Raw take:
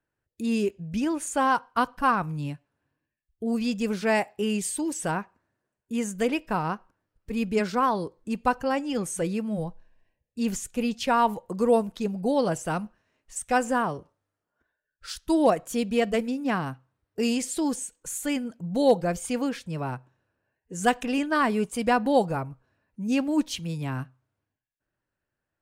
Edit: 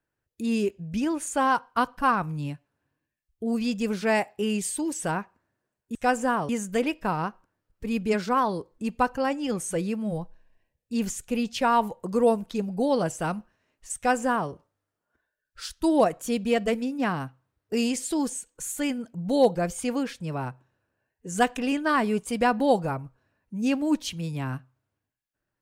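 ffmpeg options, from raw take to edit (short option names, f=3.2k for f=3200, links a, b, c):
-filter_complex "[0:a]asplit=3[a][b][c];[a]atrim=end=5.952[d];[b]atrim=start=13.418:end=13.962[e];[c]atrim=start=5.948[f];[d][e]acrossfade=d=0.004:c1=hsin:c2=hsin[g];[g][f]acrossfade=d=0.004:c1=hsin:c2=hsin"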